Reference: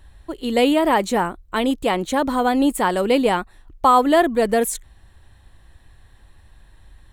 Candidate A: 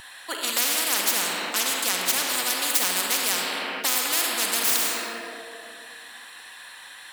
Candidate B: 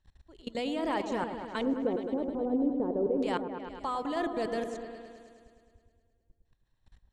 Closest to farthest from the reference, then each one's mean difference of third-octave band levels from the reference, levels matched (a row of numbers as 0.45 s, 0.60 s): B, A; 10.0 dB, 16.5 dB